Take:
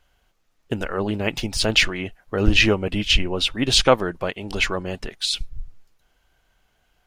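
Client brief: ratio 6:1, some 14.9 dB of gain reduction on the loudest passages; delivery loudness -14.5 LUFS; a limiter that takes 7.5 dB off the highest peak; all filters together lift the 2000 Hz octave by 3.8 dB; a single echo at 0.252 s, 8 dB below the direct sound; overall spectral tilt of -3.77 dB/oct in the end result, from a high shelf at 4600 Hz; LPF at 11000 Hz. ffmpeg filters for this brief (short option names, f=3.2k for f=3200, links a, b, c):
-af "lowpass=11k,equalizer=f=2k:t=o:g=4,highshelf=f=4.6k:g=4,acompressor=threshold=-26dB:ratio=6,alimiter=limit=-20.5dB:level=0:latency=1,aecho=1:1:252:0.398,volume=17dB"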